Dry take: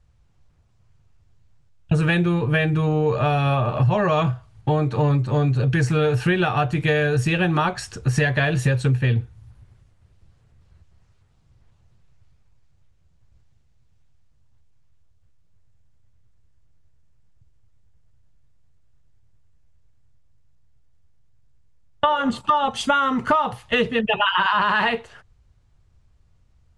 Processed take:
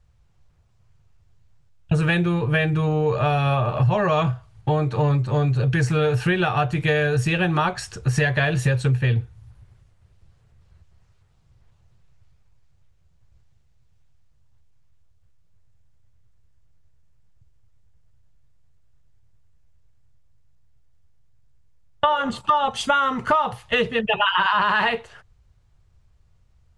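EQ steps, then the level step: bell 260 Hz -6 dB 0.56 oct; 0.0 dB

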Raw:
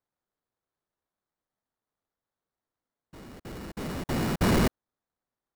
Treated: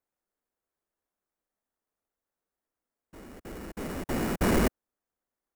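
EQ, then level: ten-band EQ 125 Hz -10 dB, 1000 Hz -3 dB, 4000 Hz -8 dB; +1.5 dB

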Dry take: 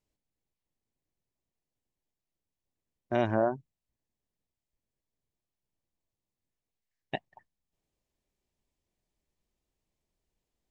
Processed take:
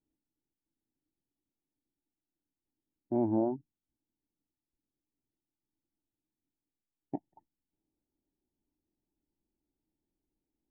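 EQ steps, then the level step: vocal tract filter u; +9.0 dB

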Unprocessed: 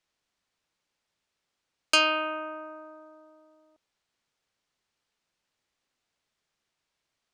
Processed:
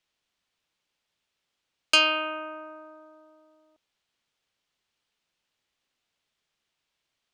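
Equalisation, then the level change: bell 3100 Hz +5 dB 0.87 oct; -1.0 dB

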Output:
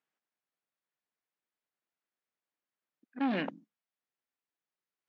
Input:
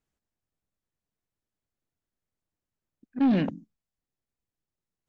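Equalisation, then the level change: BPF 170–2000 Hz; tilt +4.5 dB/oct; 0.0 dB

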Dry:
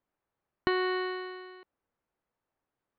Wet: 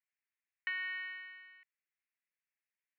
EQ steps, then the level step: Butterworth band-pass 2200 Hz, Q 2.4; +1.0 dB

